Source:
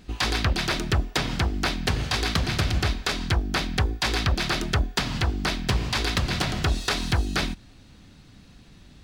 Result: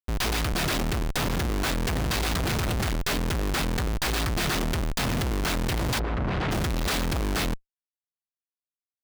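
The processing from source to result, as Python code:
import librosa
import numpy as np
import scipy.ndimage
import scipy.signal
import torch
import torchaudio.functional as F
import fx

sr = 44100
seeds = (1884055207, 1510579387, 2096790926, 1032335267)

y = fx.schmitt(x, sr, flips_db=-33.5)
y = fx.lowpass(y, sr, hz=fx.line((5.98, 1100.0), (6.5, 2900.0)), slope=12, at=(5.98, 6.5), fade=0.02)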